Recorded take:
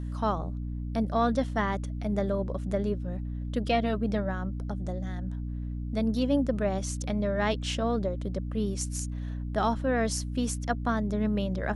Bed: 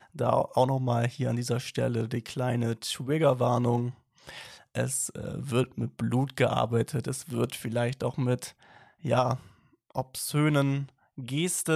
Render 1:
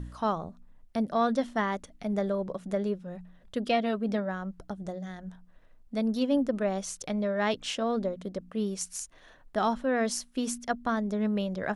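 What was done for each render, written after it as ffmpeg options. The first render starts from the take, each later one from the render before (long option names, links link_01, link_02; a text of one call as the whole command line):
ffmpeg -i in.wav -af "bandreject=frequency=60:width_type=h:width=4,bandreject=frequency=120:width_type=h:width=4,bandreject=frequency=180:width_type=h:width=4,bandreject=frequency=240:width_type=h:width=4,bandreject=frequency=300:width_type=h:width=4" out.wav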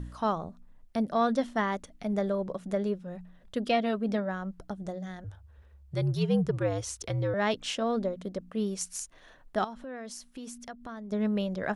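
ffmpeg -i in.wav -filter_complex "[0:a]asettb=1/sr,asplit=3[link_01][link_02][link_03];[link_01]atrim=end=5.244[link_04];[link_02]atrim=start=5.24:end=7.34,asetpts=PTS-STARTPTS,afade=type=in:duration=0.004:curve=qsin,afade=type=out:start_time=2.096:duration=0.004:curve=qsin,afreqshift=-84[link_05];[link_03]atrim=start=7.336[link_06];[link_04][link_05]acrossfade=duration=0.004:curve1=hsin:curve2=qsin[link_07];[link_07][link_06]acrossfade=duration=0.004:curve1=qsin:curve2=hsin,asettb=1/sr,asplit=3[link_08][link_09][link_10];[link_08]atrim=end=9.644[link_11];[link_09]atrim=start=9.64:end=11.12,asetpts=PTS-STARTPTS,afade=type=in:duration=0.004:curve=qsin,afade=type=out:start_time=1.476:duration=0.004:curve=qsin,acompressor=threshold=-42dB:ratio=3:attack=3.2:release=140:knee=1:detection=peak[link_12];[link_10]atrim=start=11.116[link_13];[link_11][link_12]acrossfade=duration=0.004:curve1=hsin:curve2=qsin[link_14];[link_14][link_13]acrossfade=duration=0.004:curve1=qsin:curve2=hsin" out.wav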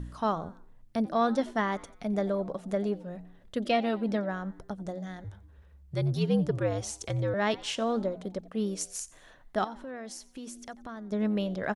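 ffmpeg -i in.wav -filter_complex "[0:a]asplit=4[link_01][link_02][link_03][link_04];[link_02]adelay=89,afreqshift=100,volume=-21dB[link_05];[link_03]adelay=178,afreqshift=200,volume=-28.7dB[link_06];[link_04]adelay=267,afreqshift=300,volume=-36.5dB[link_07];[link_01][link_05][link_06][link_07]amix=inputs=4:normalize=0" out.wav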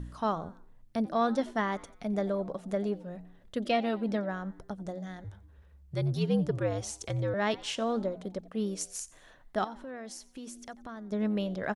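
ffmpeg -i in.wav -af "volume=-1.5dB" out.wav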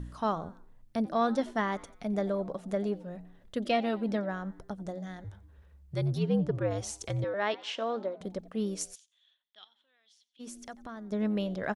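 ffmpeg -i in.wav -filter_complex "[0:a]asettb=1/sr,asplit=3[link_01][link_02][link_03];[link_01]atrim=end=6.184[link_04];[link_02]atrim=start=6.18:end=6.71,asetpts=PTS-STARTPTS,afade=type=in:duration=0.004:curve=qsin,afade=type=out:start_time=0.526:duration=0.004:curve=qsin,highshelf=frequency=3800:gain=-10.5[link_05];[link_03]atrim=start=6.706[link_06];[link_04][link_05]acrossfade=duration=0.004:curve1=hsin:curve2=qsin[link_07];[link_07][link_06]acrossfade=duration=0.004:curve1=qsin:curve2=hsin,asettb=1/sr,asplit=3[link_08][link_09][link_10];[link_08]atrim=end=7.244[link_11];[link_09]atrim=start=7.24:end=8.21,asetpts=PTS-STARTPTS,afade=type=in:duration=0.004:curve=qsin,afade=type=out:start_time=0.966:duration=0.004:curve=qsin,highpass=360,lowpass=4100[link_12];[link_10]atrim=start=8.206[link_13];[link_11][link_12]acrossfade=duration=0.004:curve1=hsin:curve2=qsin[link_14];[link_14][link_13]acrossfade=duration=0.004:curve1=qsin:curve2=hsin,asplit=3[link_15][link_16][link_17];[link_15]afade=type=out:start_time=8.94:duration=0.02[link_18];[link_16]bandpass=frequency=3400:width_type=q:width=8.7,afade=type=in:start_time=8.94:duration=0.02,afade=type=out:start_time=10.39:duration=0.02[link_19];[link_17]afade=type=in:start_time=10.39:duration=0.02[link_20];[link_18][link_19][link_20]amix=inputs=3:normalize=0" out.wav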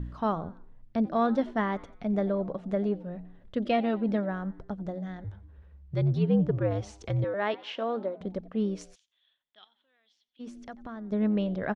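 ffmpeg -i in.wav -af "lowpass=3400,lowshelf=frequency=410:gain=5" out.wav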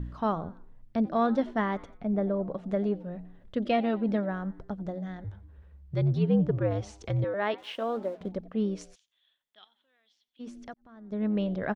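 ffmpeg -i in.wav -filter_complex "[0:a]asettb=1/sr,asplit=3[link_01][link_02][link_03];[link_01]atrim=end=1.974[link_04];[link_02]atrim=start=1.97:end=2.51,asetpts=PTS-STARTPTS,afade=type=in:duration=0.004:curve=qsin,afade=type=out:start_time=0.536:duration=0.004:curve=qsin,lowpass=frequency=1300:poles=1[link_05];[link_03]atrim=start=2.506[link_06];[link_04][link_05]acrossfade=duration=0.004:curve1=hsin:curve2=qsin[link_07];[link_07][link_06]acrossfade=duration=0.004:curve1=qsin:curve2=hsin,asettb=1/sr,asplit=3[link_08][link_09][link_10];[link_08]atrim=end=7.584[link_11];[link_09]atrim=start=7.58:end=8.3,asetpts=PTS-STARTPTS,afade=type=in:duration=0.004:curve=qsin,afade=type=out:start_time=0.716:duration=0.004:curve=qsin,aeval=exprs='sgn(val(0))*max(abs(val(0))-0.00133,0)':channel_layout=same[link_12];[link_10]atrim=start=8.296[link_13];[link_11][link_12]acrossfade=duration=0.004:curve1=hsin:curve2=qsin[link_14];[link_14][link_13]acrossfade=duration=0.004:curve1=qsin:curve2=hsin,asplit=2[link_15][link_16];[link_15]atrim=end=10.74,asetpts=PTS-STARTPTS,afade=type=out:start_time=10.736:duration=0.004:curve=hsin[link_17];[link_16]atrim=start=10.74,asetpts=PTS-STARTPTS,afade=type=in:duration=0.7[link_18];[link_17][link_18]concat=n=2:v=0:a=1" out.wav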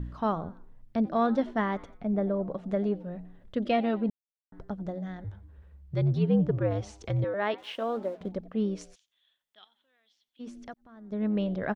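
ffmpeg -i in.wav -filter_complex "[0:a]asplit=3[link_01][link_02][link_03];[link_01]atrim=end=4.1,asetpts=PTS-STARTPTS,afade=type=out:start_time=4.096:duration=0.004:curve=hsin[link_04];[link_02]atrim=start=4.1:end=4.52,asetpts=PTS-STARTPTS,volume=0[link_05];[link_03]atrim=start=4.52,asetpts=PTS-STARTPTS,afade=type=in:duration=0.004:curve=hsin[link_06];[link_04][link_05][link_06]concat=n=3:v=0:a=1" out.wav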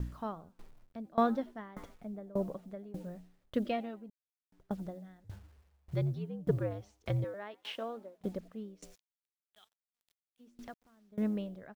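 ffmpeg -i in.wav -af "acrusher=bits=9:mix=0:aa=0.000001,aeval=exprs='val(0)*pow(10,-24*if(lt(mod(1.7*n/s,1),2*abs(1.7)/1000),1-mod(1.7*n/s,1)/(2*abs(1.7)/1000),(mod(1.7*n/s,1)-2*abs(1.7)/1000)/(1-2*abs(1.7)/1000))/20)':channel_layout=same" out.wav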